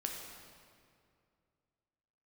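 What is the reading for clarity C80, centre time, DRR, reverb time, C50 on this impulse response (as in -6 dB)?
4.0 dB, 75 ms, 0.5 dB, 2.3 s, 2.5 dB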